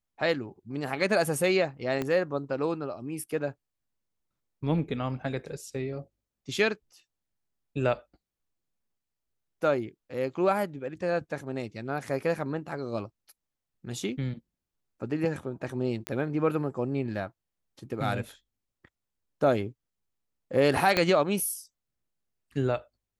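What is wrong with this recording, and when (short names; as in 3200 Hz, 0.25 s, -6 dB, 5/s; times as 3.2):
2.02 pop -17 dBFS
16.07 pop -15 dBFS
20.97 pop -9 dBFS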